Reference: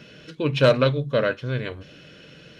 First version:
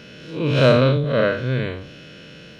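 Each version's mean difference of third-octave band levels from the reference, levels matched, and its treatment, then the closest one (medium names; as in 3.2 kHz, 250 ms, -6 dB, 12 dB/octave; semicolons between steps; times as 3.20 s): 3.0 dB: spectral blur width 138 ms; peaking EQ 220 Hz +2.5 dB 0.35 oct; trim +6.5 dB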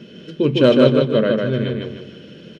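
5.0 dB: small resonant body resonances 220/360/3100 Hz, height 15 dB, ringing for 35 ms; on a send: feedback delay 153 ms, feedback 39%, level -3 dB; on the sum: trim -3 dB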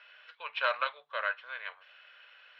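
11.5 dB: inverse Chebyshev high-pass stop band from 340 Hz, stop band 50 dB; distance through air 430 m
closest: first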